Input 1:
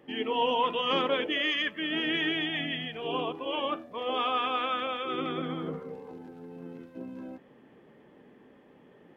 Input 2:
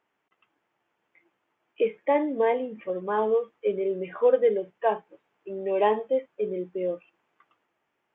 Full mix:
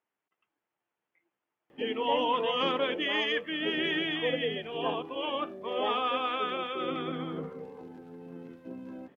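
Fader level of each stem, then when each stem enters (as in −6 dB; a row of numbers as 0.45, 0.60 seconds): −1.5, −11.5 decibels; 1.70, 0.00 seconds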